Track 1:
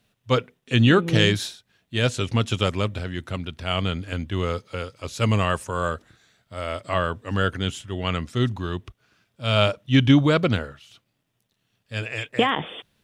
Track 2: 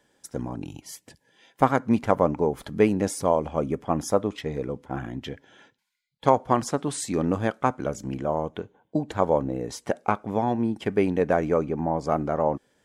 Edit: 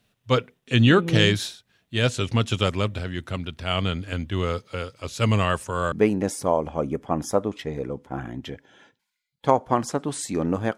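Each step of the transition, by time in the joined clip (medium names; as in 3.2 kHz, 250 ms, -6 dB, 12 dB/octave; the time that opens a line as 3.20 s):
track 1
5.92 s: go over to track 2 from 2.71 s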